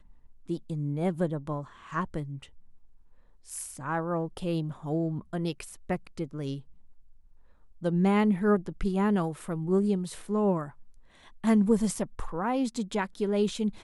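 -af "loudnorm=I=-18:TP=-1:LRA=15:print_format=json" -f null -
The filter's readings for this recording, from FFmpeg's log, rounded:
"input_i" : "-29.4",
"input_tp" : "-12.6",
"input_lra" : "6.9",
"input_thresh" : "-40.1",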